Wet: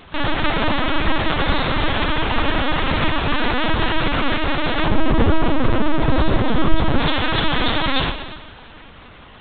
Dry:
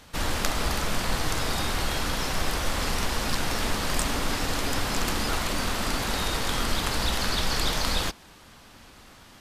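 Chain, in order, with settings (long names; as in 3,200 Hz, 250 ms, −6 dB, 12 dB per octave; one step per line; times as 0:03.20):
0:04.86–0:06.99: tilt shelving filter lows +7.5 dB, about 880 Hz
four-comb reverb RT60 1.5 s, combs from 25 ms, DRR 7 dB
linear-prediction vocoder at 8 kHz pitch kept
level +8 dB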